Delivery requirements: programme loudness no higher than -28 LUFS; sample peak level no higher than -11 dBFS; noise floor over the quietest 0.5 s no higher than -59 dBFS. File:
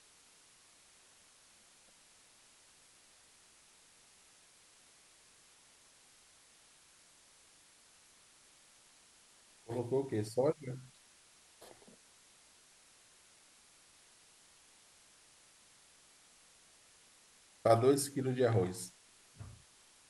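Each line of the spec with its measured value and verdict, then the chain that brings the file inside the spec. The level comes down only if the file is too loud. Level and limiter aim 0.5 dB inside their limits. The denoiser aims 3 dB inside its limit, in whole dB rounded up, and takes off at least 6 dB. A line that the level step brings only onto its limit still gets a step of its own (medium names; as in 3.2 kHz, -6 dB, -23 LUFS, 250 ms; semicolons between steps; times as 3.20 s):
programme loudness -34.0 LUFS: pass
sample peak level -14.5 dBFS: pass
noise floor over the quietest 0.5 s -64 dBFS: pass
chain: none needed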